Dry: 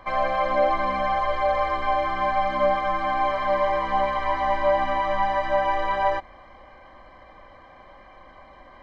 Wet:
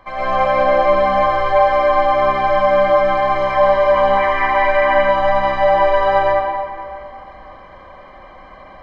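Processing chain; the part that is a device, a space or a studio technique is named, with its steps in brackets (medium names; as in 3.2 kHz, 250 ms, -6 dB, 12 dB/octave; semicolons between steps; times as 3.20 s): stairwell (reverberation RT60 2.3 s, pre-delay 91 ms, DRR -8.5 dB); 4.17–5.09 s: ten-band graphic EQ 125 Hz -5 dB, 500 Hz -3 dB, 2 kHz +9 dB, 4 kHz -4 dB; trim -1 dB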